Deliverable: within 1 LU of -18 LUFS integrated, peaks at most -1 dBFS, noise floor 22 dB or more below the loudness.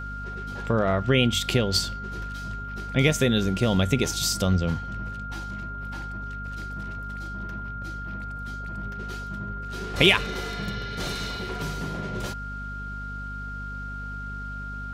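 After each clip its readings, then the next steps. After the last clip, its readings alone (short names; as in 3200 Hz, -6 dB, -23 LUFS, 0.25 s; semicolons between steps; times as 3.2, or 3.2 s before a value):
hum 50 Hz; harmonics up to 250 Hz; hum level -34 dBFS; steady tone 1400 Hz; tone level -35 dBFS; loudness -27.5 LUFS; peak -4.5 dBFS; loudness target -18.0 LUFS
-> de-hum 50 Hz, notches 5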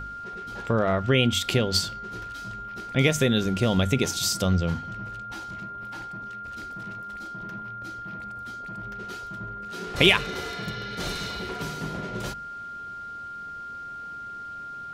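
hum none; steady tone 1400 Hz; tone level -35 dBFS
-> notch 1400 Hz, Q 30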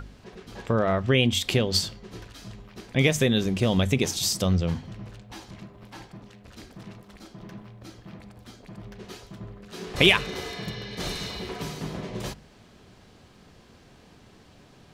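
steady tone none; loudness -25.0 LUFS; peak -4.0 dBFS; loudness target -18.0 LUFS
-> gain +7 dB; limiter -1 dBFS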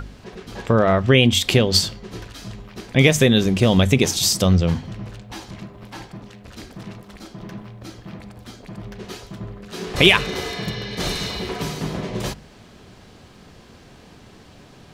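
loudness -18.5 LUFS; peak -1.0 dBFS; noise floor -47 dBFS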